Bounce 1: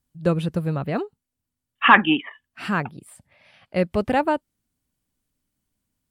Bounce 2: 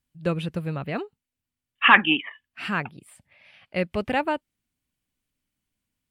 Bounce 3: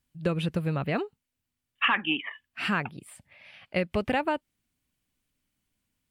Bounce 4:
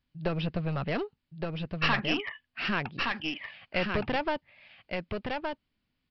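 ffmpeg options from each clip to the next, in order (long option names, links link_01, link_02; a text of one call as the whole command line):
ffmpeg -i in.wav -af "equalizer=frequency=2500:width_type=o:width=1.2:gain=8,volume=-5dB" out.wav
ffmpeg -i in.wav -af "acompressor=threshold=-25dB:ratio=6,volume=2.5dB" out.wav
ffmpeg -i in.wav -af "aresample=11025,aeval=exprs='clip(val(0),-1,0.0316)':channel_layout=same,aresample=44100,aecho=1:1:1168:0.631" out.wav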